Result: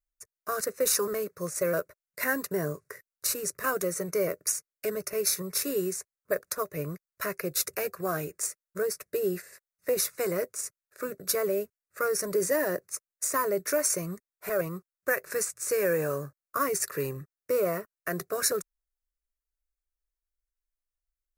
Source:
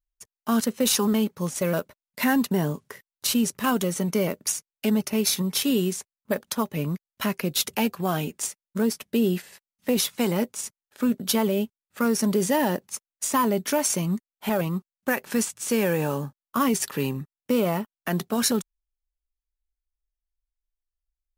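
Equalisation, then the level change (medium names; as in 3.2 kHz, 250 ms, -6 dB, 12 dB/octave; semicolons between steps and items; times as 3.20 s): bass shelf 140 Hz -4 dB; static phaser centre 860 Hz, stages 6; 0.0 dB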